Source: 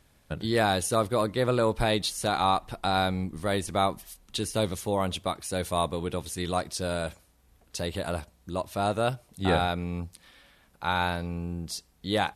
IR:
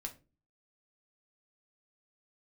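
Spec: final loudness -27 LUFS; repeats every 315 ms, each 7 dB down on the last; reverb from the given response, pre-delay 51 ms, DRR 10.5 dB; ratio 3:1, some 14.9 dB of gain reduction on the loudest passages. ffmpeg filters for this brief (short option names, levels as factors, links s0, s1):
-filter_complex "[0:a]acompressor=threshold=0.00891:ratio=3,aecho=1:1:315|630|945|1260|1575:0.447|0.201|0.0905|0.0407|0.0183,asplit=2[s0][s1];[1:a]atrim=start_sample=2205,adelay=51[s2];[s1][s2]afir=irnorm=-1:irlink=0,volume=0.398[s3];[s0][s3]amix=inputs=2:normalize=0,volume=4.73"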